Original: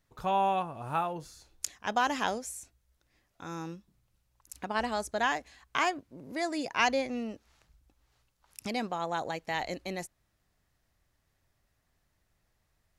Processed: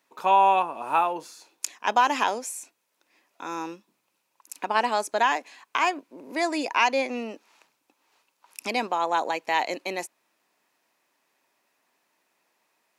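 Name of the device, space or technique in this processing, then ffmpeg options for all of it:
laptop speaker: -af "highpass=frequency=260:width=0.5412,highpass=frequency=260:width=1.3066,equalizer=frequency=960:width_type=o:width=0.29:gain=8,equalizer=frequency=2500:width_type=o:width=0.24:gain=7.5,alimiter=limit=-15.5dB:level=0:latency=1:release=201,volume=6dB"

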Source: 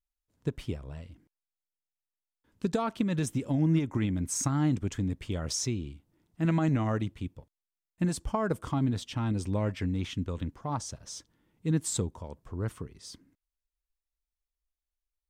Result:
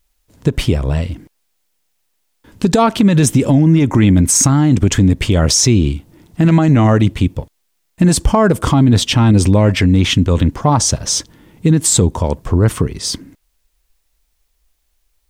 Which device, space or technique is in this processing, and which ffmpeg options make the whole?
mastering chain: -af "equalizer=frequency=1300:width_type=o:width=0.77:gain=-2.5,acompressor=threshold=-29dB:ratio=3,asoftclip=type=hard:threshold=-22.5dB,alimiter=level_in=28dB:limit=-1dB:release=50:level=0:latency=1,volume=-2.5dB"

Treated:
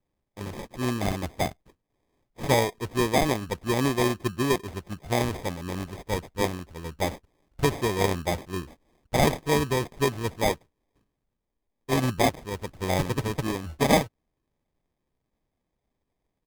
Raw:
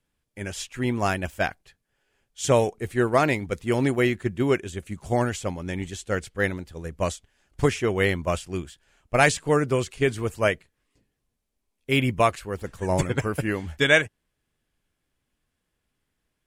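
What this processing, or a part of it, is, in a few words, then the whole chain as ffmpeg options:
crushed at another speed: -af "asetrate=35280,aresample=44100,acrusher=samples=39:mix=1:aa=0.000001,asetrate=55125,aresample=44100,volume=-2dB"

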